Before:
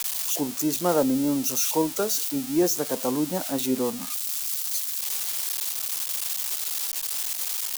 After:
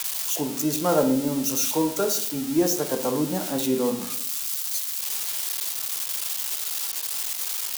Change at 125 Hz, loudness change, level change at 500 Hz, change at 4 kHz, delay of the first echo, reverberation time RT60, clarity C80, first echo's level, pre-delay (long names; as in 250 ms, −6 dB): +3.0 dB, +0.5 dB, +1.5 dB, +1.0 dB, no echo audible, 0.65 s, 13.0 dB, no echo audible, 3 ms